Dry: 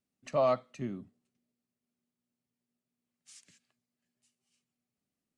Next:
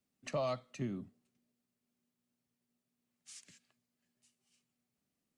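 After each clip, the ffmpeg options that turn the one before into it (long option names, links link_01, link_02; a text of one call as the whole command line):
ffmpeg -i in.wav -filter_complex "[0:a]acrossover=split=130|3000[link_01][link_02][link_03];[link_02]acompressor=threshold=-39dB:ratio=3[link_04];[link_01][link_04][link_03]amix=inputs=3:normalize=0,volume=2dB" out.wav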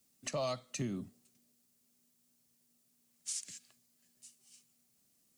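ffmpeg -i in.wav -af "bass=frequency=250:gain=0,treble=frequency=4000:gain=13,alimiter=level_in=8.5dB:limit=-24dB:level=0:latency=1:release=334,volume=-8.5dB,volume=5dB" out.wav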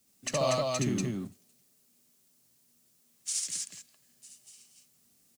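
ffmpeg -i in.wav -filter_complex "[0:a]asplit=2[link_01][link_02];[link_02]aeval=exprs='val(0)*gte(abs(val(0)),0.00668)':channel_layout=same,volume=-10dB[link_03];[link_01][link_03]amix=inputs=2:normalize=0,aecho=1:1:69.97|239.1:0.891|0.794,volume=3dB" out.wav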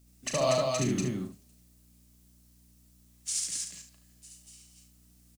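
ffmpeg -i in.wav -af "aeval=exprs='val(0)+0.001*(sin(2*PI*60*n/s)+sin(2*PI*2*60*n/s)/2+sin(2*PI*3*60*n/s)/3+sin(2*PI*4*60*n/s)/4+sin(2*PI*5*60*n/s)/5)':channel_layout=same,aecho=1:1:38|73:0.398|0.316" out.wav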